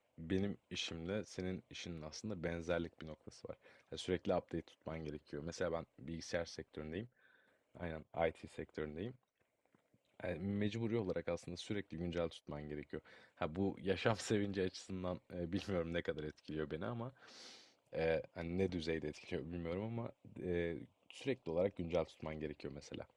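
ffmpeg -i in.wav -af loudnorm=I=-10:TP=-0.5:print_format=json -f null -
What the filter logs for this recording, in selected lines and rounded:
"input_i" : "-42.6",
"input_tp" : "-17.0",
"input_lra" : "4.3",
"input_thresh" : "-53.0",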